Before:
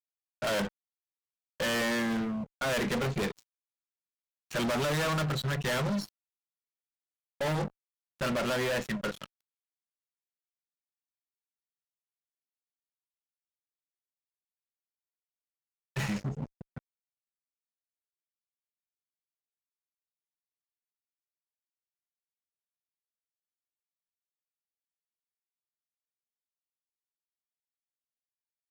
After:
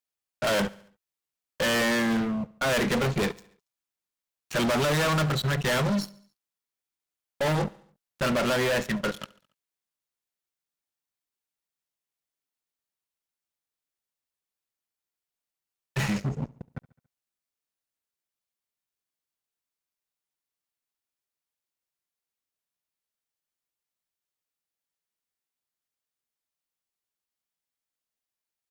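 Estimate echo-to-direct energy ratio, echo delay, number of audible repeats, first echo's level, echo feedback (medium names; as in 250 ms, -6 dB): -20.5 dB, 70 ms, 3, -22.0 dB, 54%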